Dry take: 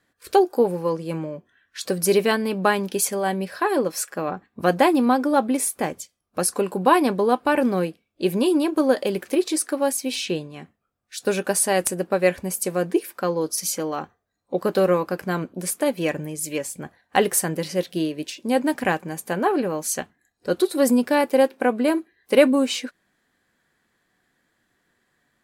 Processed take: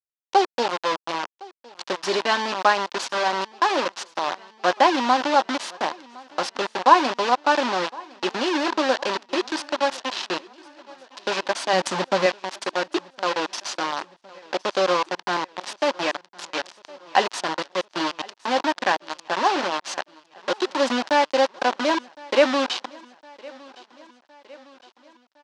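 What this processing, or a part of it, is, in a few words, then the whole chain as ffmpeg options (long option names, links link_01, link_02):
hand-held game console: -filter_complex "[0:a]asettb=1/sr,asplit=3[link_01][link_02][link_03];[link_01]atrim=end=11.734[link_04];[link_02]atrim=start=11.73:end=12.26,asetpts=PTS-STARTPTS,afade=type=in:duration=0.004:curve=qsin,afade=type=out:start_time=0.526:duration=0.004:curve=qsin,bass=frequency=250:gain=15,treble=frequency=4000:gain=7[link_05];[link_03]atrim=start=12.256[link_06];[link_04][link_05]acrossfade=duration=0.004:curve1=hsin:curve2=qsin[link_07];[link_07][link_06]acrossfade=duration=0.004:curve1=qsin:curve2=hsin,acrusher=bits=3:mix=0:aa=0.000001,highpass=420,equalizer=frequency=450:width_type=q:width=4:gain=-9,equalizer=frequency=950:width_type=q:width=4:gain=5,equalizer=frequency=2200:width_type=q:width=4:gain=-4,lowpass=frequency=5300:width=0.5412,lowpass=frequency=5300:width=1.3066,aecho=1:1:1061|2122|3183|4244:0.0708|0.0411|0.0238|0.0138,volume=1.5dB"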